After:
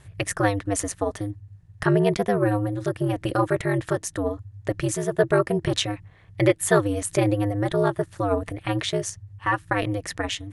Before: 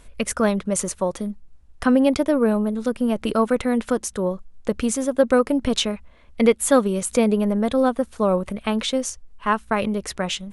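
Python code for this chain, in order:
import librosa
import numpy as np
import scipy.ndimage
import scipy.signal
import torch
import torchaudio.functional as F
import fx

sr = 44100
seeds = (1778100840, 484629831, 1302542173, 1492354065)

y = x * np.sin(2.0 * np.pi * 100.0 * np.arange(len(x)) / sr)
y = fx.peak_eq(y, sr, hz=1800.0, db=10.5, octaves=0.22)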